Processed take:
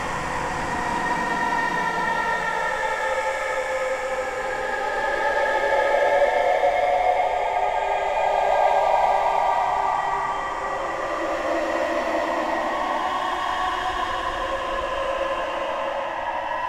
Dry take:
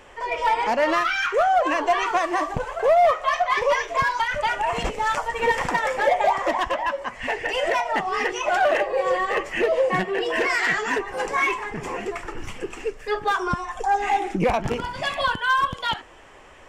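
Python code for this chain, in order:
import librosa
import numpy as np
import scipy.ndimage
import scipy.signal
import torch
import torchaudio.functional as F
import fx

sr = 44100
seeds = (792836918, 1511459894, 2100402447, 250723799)

y = fx.dmg_noise_colour(x, sr, seeds[0], colour='brown', level_db=-46.0)
y = fx.paulstretch(y, sr, seeds[1], factor=14.0, window_s=0.25, from_s=5.64)
y = F.gain(torch.from_numpy(y), -1.0).numpy()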